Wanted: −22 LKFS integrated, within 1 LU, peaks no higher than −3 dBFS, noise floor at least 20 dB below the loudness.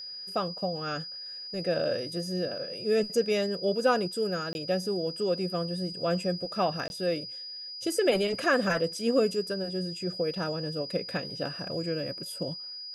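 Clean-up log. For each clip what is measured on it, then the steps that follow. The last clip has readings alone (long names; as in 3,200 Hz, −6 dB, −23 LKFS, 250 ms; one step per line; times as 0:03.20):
number of dropouts 2; longest dropout 21 ms; interfering tone 4,900 Hz; level of the tone −38 dBFS; integrated loudness −30.0 LKFS; sample peak −12.5 dBFS; target loudness −22.0 LKFS
→ repair the gap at 0:04.53/0:06.88, 21 ms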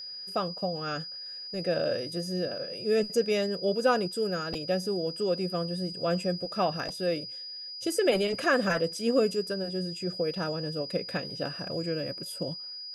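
number of dropouts 0; interfering tone 4,900 Hz; level of the tone −38 dBFS
→ notch filter 4,900 Hz, Q 30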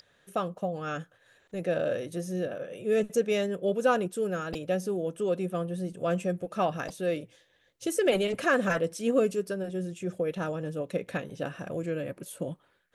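interfering tone none found; integrated loudness −30.5 LKFS; sample peak −13.0 dBFS; target loudness −22.0 LKFS
→ level +8.5 dB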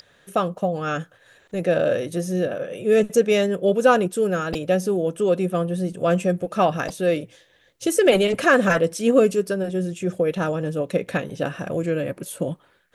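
integrated loudness −22.0 LKFS; sample peak −4.5 dBFS; background noise floor −59 dBFS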